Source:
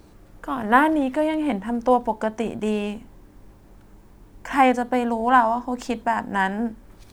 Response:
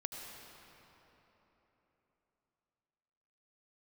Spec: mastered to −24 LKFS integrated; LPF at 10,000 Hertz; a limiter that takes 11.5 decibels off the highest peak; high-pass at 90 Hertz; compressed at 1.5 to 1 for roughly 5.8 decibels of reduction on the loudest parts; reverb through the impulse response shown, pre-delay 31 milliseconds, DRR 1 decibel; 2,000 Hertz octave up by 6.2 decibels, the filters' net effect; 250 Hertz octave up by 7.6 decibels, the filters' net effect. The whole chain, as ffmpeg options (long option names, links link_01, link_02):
-filter_complex "[0:a]highpass=90,lowpass=10000,equalizer=frequency=250:width_type=o:gain=8.5,equalizer=frequency=2000:width_type=o:gain=8,acompressor=threshold=-23dB:ratio=1.5,alimiter=limit=-16.5dB:level=0:latency=1,asplit=2[link_01][link_02];[1:a]atrim=start_sample=2205,adelay=31[link_03];[link_02][link_03]afir=irnorm=-1:irlink=0,volume=-0.5dB[link_04];[link_01][link_04]amix=inputs=2:normalize=0,volume=-1dB"